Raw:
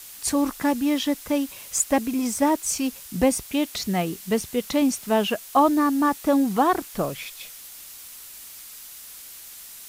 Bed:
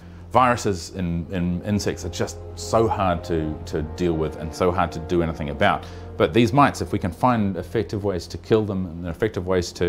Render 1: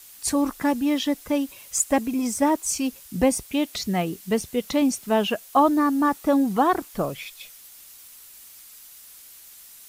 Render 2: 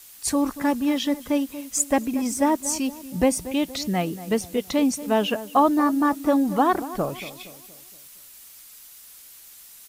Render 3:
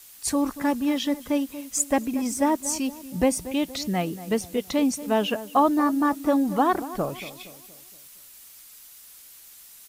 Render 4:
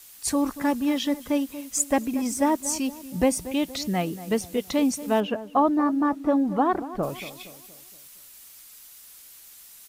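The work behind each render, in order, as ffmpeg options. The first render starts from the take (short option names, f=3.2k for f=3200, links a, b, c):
-af "afftdn=nr=6:nf=-42"
-filter_complex "[0:a]asplit=2[a][b];[b]adelay=234,lowpass=f=1.5k:p=1,volume=-14dB,asplit=2[c][d];[d]adelay=234,lowpass=f=1.5k:p=1,volume=0.48,asplit=2[e][f];[f]adelay=234,lowpass=f=1.5k:p=1,volume=0.48,asplit=2[g][h];[h]adelay=234,lowpass=f=1.5k:p=1,volume=0.48,asplit=2[i][j];[j]adelay=234,lowpass=f=1.5k:p=1,volume=0.48[k];[a][c][e][g][i][k]amix=inputs=6:normalize=0"
-af "volume=-1.5dB"
-filter_complex "[0:a]asettb=1/sr,asplit=3[a][b][c];[a]atrim=end=5.204[d];[b]atrim=start=5.2:end=7.03,asetpts=PTS-STARTPTS,afade=t=in:d=0.004:c=qsin,afade=t=out:st=1.826:d=0.004:c=qsin,lowpass=f=1.4k:p=1[e];[c]atrim=start=7.026[f];[d][e]acrossfade=d=0.004:c1=hsin:c2=qsin[g];[g][f]acrossfade=d=0.004:c1=qsin:c2=hsin"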